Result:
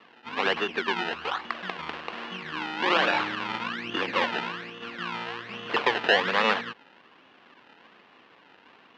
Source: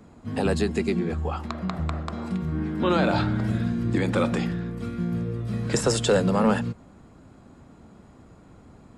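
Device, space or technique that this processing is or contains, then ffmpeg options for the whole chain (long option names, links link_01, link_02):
circuit-bent sampling toy: -af "acrusher=samples=27:mix=1:aa=0.000001:lfo=1:lforange=27:lforate=1.2,highpass=530,equalizer=frequency=630:width_type=q:width=4:gain=-5,equalizer=frequency=1100:width_type=q:width=4:gain=4,equalizer=frequency=1700:width_type=q:width=4:gain=5,equalizer=frequency=2800:width_type=q:width=4:gain=7,lowpass=frequency=4100:width=0.5412,lowpass=frequency=4100:width=1.3066,volume=1.5dB"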